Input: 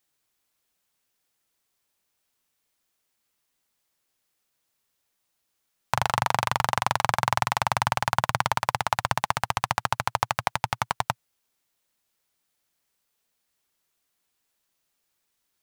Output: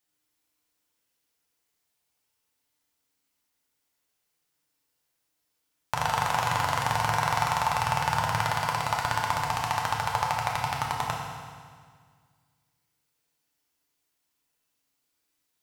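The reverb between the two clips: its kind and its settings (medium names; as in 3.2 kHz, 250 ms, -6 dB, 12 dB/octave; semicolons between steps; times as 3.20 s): FDN reverb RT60 1.8 s, low-frequency decay 1.25×, high-frequency decay 0.95×, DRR -2 dB; trim -5.5 dB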